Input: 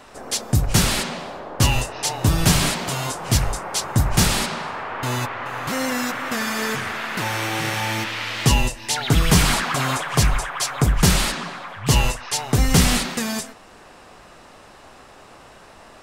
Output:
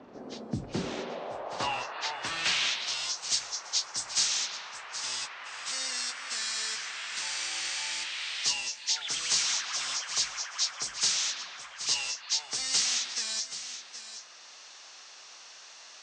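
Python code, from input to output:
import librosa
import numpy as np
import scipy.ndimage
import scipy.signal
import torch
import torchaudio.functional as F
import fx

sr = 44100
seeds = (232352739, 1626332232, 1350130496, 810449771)

y = fx.freq_compress(x, sr, knee_hz=2900.0, ratio=1.5)
y = fx.bass_treble(y, sr, bass_db=-5, treble_db=1)
y = y + 10.0 ** (-16.5 / 20.0) * np.pad(y, (int(774 * sr / 1000.0), 0))[:len(y)]
y = fx.filter_sweep_bandpass(y, sr, from_hz=230.0, to_hz=6000.0, start_s=0.55, end_s=3.22, q=1.4)
y = fx.band_squash(y, sr, depth_pct=40)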